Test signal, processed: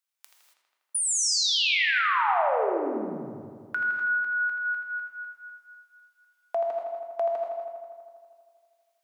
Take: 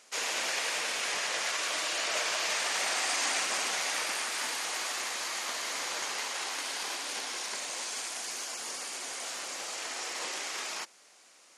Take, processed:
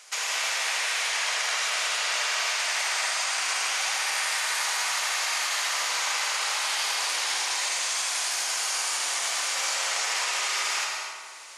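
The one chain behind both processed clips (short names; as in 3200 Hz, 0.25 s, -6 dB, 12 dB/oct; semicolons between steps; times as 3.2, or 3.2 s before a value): HPF 830 Hz 12 dB/oct; in parallel at +2 dB: vocal rider within 4 dB; on the sum: limiter -21 dBFS; compressor 4:1, threshold -28 dBFS; on a send: darkening echo 81 ms, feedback 77%, low-pass 4800 Hz, level -6 dB; on the sum: non-linear reverb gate 0.3 s flat, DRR 2 dB; gain +1.5 dB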